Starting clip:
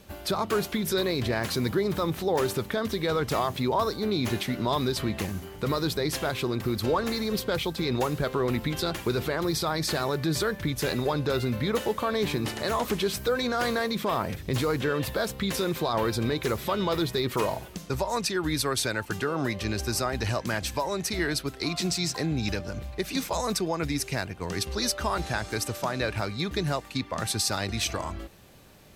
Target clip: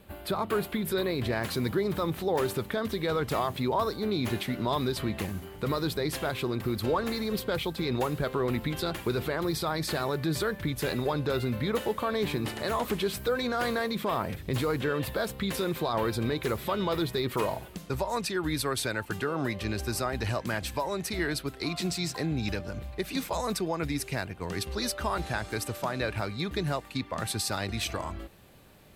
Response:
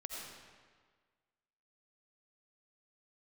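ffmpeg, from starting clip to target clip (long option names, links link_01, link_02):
-af "asetnsamples=nb_out_samples=441:pad=0,asendcmd='1.23 equalizer g -6',equalizer=frequency=5900:width=1.9:gain=-14.5,volume=-2dB"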